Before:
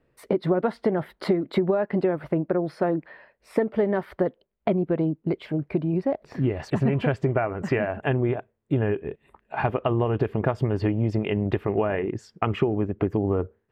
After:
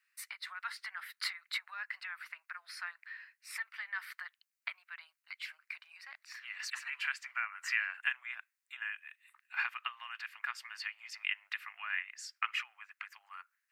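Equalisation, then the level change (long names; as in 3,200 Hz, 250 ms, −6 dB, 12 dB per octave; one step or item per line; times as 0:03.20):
Bessel high-pass filter 2,500 Hz, order 8
parametric band 3,300 Hz −9.5 dB 0.35 octaves
+7.0 dB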